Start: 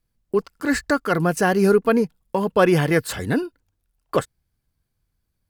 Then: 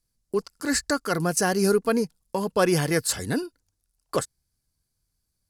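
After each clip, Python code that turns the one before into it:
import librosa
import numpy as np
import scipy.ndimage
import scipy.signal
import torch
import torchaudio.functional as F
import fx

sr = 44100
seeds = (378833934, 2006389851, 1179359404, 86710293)

y = fx.band_shelf(x, sr, hz=7100.0, db=11.5, octaves=1.7)
y = y * librosa.db_to_amplitude(-5.0)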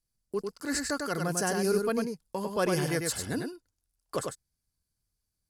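y = x + 10.0 ** (-4.5 / 20.0) * np.pad(x, (int(99 * sr / 1000.0), 0))[:len(x)]
y = y * librosa.db_to_amplitude(-7.0)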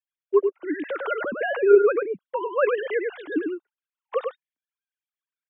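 y = fx.sine_speech(x, sr)
y = fx.spec_box(y, sr, start_s=0.47, length_s=0.48, low_hz=630.0, high_hz=1900.0, gain_db=-7)
y = y * librosa.db_to_amplitude(7.5)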